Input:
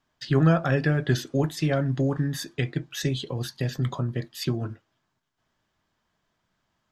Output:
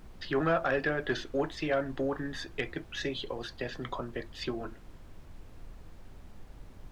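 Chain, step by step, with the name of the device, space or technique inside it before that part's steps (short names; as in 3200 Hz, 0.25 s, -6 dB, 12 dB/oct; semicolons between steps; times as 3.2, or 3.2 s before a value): aircraft cabin announcement (BPF 390–3300 Hz; soft clip -18 dBFS, distortion -20 dB; brown noise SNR 11 dB)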